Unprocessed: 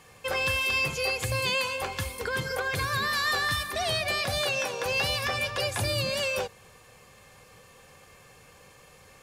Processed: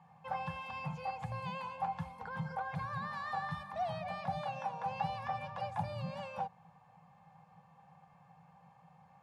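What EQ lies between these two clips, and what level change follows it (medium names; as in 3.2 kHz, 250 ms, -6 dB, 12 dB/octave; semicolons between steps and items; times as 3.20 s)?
two resonant band-passes 370 Hz, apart 2.3 oct; +4.5 dB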